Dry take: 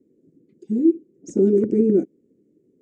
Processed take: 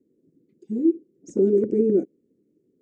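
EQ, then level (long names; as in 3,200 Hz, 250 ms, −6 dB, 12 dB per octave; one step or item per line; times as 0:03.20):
dynamic equaliser 500 Hz, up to +6 dB, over −30 dBFS, Q 1.4
−5.5 dB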